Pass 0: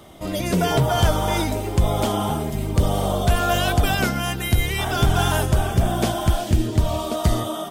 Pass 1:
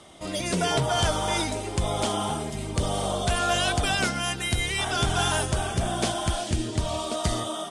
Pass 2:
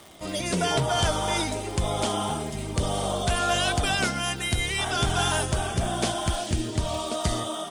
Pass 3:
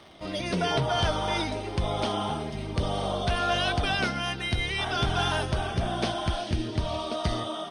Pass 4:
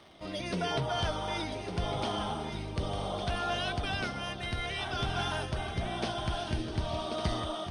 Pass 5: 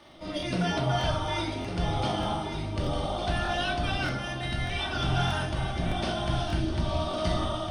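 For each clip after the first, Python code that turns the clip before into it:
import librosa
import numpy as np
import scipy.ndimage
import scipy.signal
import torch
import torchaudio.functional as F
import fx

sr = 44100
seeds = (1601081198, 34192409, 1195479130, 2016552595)

y1 = scipy.signal.sosfilt(scipy.signal.ellip(4, 1.0, 70, 9800.0, 'lowpass', fs=sr, output='sos'), x)
y1 = fx.tilt_eq(y1, sr, slope=1.5)
y1 = F.gain(torch.from_numpy(y1), -2.5).numpy()
y2 = fx.dmg_crackle(y1, sr, seeds[0], per_s=180.0, level_db=-37.0)
y3 = scipy.signal.savgol_filter(y2, 15, 4, mode='constant')
y3 = F.gain(torch.from_numpy(y3), -1.5).numpy()
y4 = fx.rider(y3, sr, range_db=4, speed_s=2.0)
y4 = y4 + 10.0 ** (-8.5 / 20.0) * np.pad(y4, (int(1156 * sr / 1000.0), 0))[:len(y4)]
y4 = F.gain(torch.from_numpy(y4), -6.5).numpy()
y5 = fx.room_shoebox(y4, sr, seeds[1], volume_m3=570.0, walls='furnished', distance_m=2.5)
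y5 = fx.buffer_crackle(y5, sr, first_s=0.38, period_s=0.61, block=1024, kind='repeat')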